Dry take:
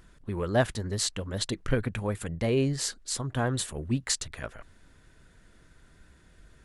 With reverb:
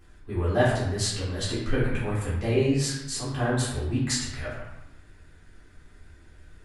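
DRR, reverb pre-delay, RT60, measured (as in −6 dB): −10.0 dB, 3 ms, 0.90 s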